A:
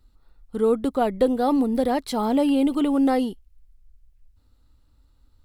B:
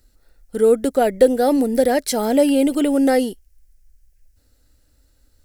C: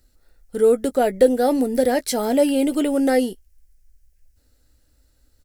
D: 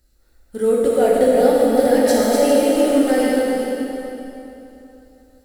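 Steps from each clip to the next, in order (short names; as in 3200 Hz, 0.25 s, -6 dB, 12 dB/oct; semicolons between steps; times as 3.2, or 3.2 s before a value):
EQ curve 180 Hz 0 dB, 390 Hz +5 dB, 590 Hz +9 dB, 1100 Hz -7 dB, 1600 Hz +10 dB, 3700 Hz +3 dB, 5600 Hz +14 dB
doubler 16 ms -12 dB; gain -2 dB
regenerating reverse delay 0.202 s, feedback 43%, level -4 dB; plate-style reverb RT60 3.1 s, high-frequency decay 0.8×, DRR -4.5 dB; gain -3.5 dB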